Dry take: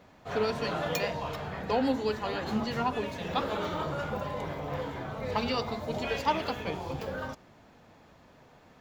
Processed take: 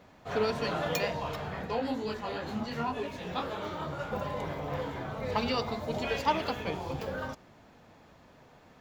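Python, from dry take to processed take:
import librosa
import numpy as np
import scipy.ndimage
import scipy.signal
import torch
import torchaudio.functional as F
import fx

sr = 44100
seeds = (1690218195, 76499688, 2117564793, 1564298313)

y = fx.detune_double(x, sr, cents=33, at=(1.66, 4.11), fade=0.02)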